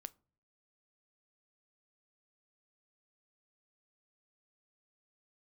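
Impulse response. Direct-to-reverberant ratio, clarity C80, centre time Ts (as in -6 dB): 15.5 dB, 31.0 dB, 2 ms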